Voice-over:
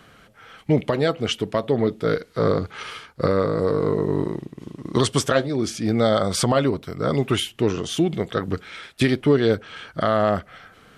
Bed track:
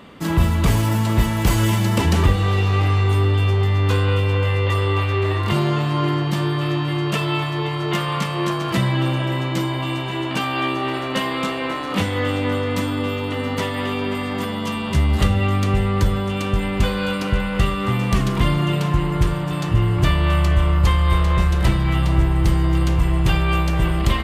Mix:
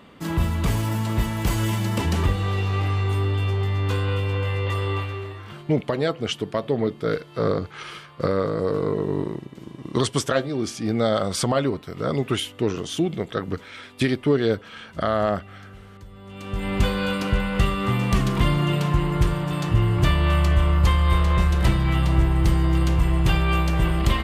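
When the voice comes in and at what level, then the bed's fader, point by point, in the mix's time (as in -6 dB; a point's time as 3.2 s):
5.00 s, -2.5 dB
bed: 4.95 s -5.5 dB
5.73 s -26 dB
16.07 s -26 dB
16.72 s -2 dB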